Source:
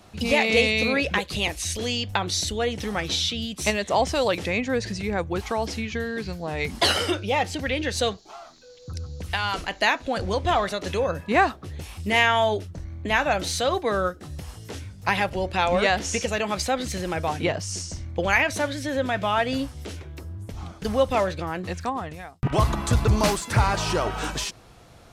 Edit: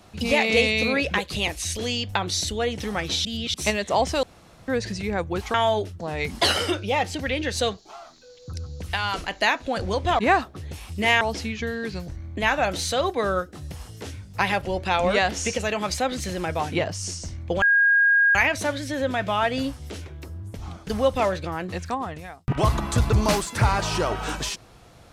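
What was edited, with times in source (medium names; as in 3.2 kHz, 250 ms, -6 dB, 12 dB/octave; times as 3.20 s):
3.25–3.54 s: reverse
4.23–4.68 s: room tone
5.54–6.41 s: swap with 12.29–12.76 s
10.59–11.27 s: delete
18.30 s: add tone 1.63 kHz -14.5 dBFS 0.73 s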